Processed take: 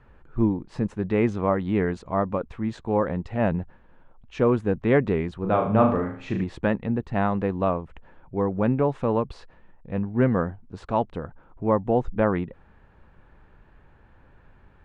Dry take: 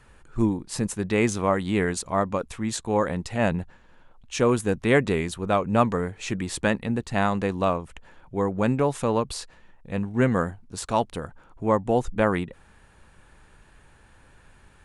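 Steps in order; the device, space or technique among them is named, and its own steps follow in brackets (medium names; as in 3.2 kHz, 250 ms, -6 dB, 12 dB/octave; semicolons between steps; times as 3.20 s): phone in a pocket (low-pass 3.4 kHz 12 dB/octave; treble shelf 2 kHz -12 dB); 5.40–6.44 s: flutter echo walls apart 6.4 m, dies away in 0.49 s; trim +1 dB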